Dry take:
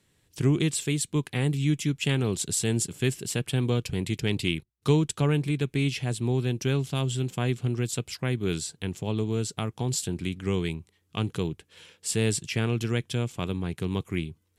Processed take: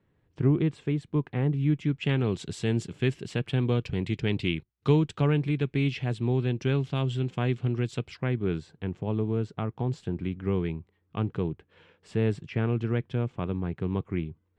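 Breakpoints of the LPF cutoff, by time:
1.57 s 1400 Hz
2.26 s 2900 Hz
8.03 s 2900 Hz
8.54 s 1600 Hz

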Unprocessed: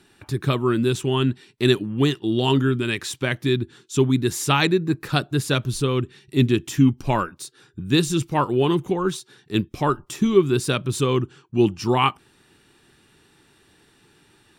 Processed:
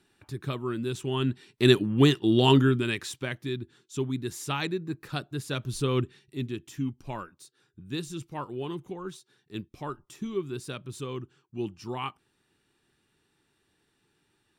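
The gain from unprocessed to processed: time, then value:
0.84 s -11 dB
1.81 s 0 dB
2.53 s 0 dB
3.45 s -11.5 dB
5.47 s -11.5 dB
6 s -3 dB
6.39 s -15 dB

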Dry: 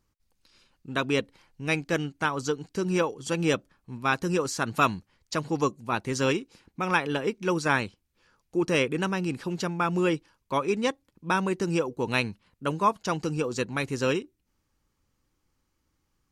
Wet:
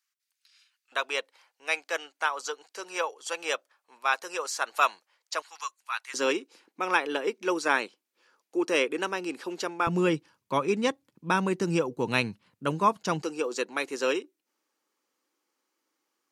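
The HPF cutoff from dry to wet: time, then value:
HPF 24 dB/oct
1500 Hz
from 0.92 s 560 Hz
from 5.42 s 1200 Hz
from 6.14 s 310 Hz
from 9.87 s 110 Hz
from 13.22 s 320 Hz

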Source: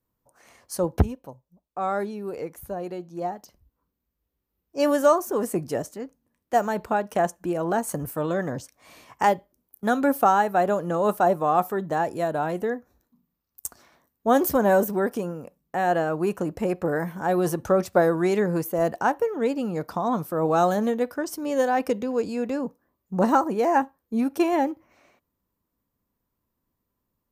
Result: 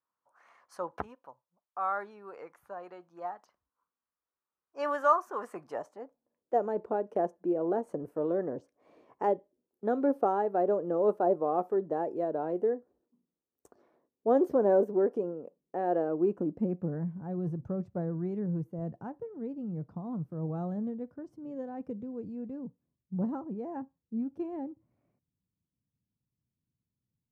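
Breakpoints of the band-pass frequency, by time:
band-pass, Q 2.1
5.58 s 1200 Hz
6.61 s 410 Hz
16.01 s 410 Hz
17.21 s 130 Hz

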